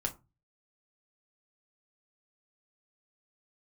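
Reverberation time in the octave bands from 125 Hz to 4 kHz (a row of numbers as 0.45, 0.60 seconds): 0.50, 0.35, 0.25, 0.25, 0.20, 0.15 seconds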